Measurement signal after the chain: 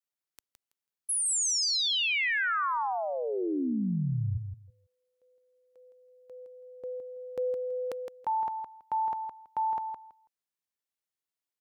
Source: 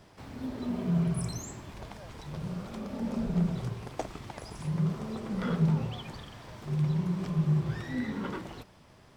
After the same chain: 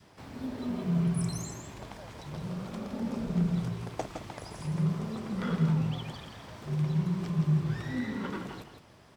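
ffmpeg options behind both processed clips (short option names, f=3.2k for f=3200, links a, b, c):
-af "highpass=f=68:p=1,adynamicequalizer=threshold=0.00708:dfrequency=580:dqfactor=1.2:tfrequency=580:tqfactor=1.2:attack=5:release=100:ratio=0.375:range=2.5:mode=cutabove:tftype=bell,aecho=1:1:164|328|492:0.447|0.0804|0.0145"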